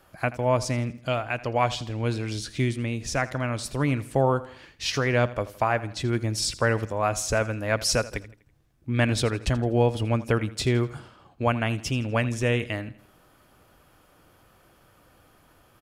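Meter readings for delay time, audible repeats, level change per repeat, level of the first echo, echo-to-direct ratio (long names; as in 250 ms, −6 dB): 82 ms, 3, −7.5 dB, −17.5 dB, −16.5 dB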